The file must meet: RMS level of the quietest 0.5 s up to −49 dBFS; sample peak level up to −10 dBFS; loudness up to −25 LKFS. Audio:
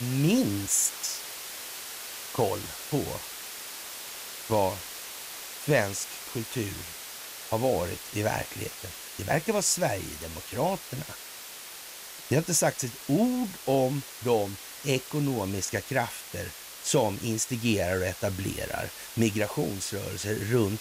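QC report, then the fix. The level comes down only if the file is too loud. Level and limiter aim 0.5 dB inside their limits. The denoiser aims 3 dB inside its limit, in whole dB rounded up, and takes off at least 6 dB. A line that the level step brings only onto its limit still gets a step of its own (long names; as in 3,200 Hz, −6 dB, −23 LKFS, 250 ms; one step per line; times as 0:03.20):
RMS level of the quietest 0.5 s −43 dBFS: out of spec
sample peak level −12.5 dBFS: in spec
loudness −29.5 LKFS: in spec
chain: broadband denoise 9 dB, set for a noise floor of −43 dBFS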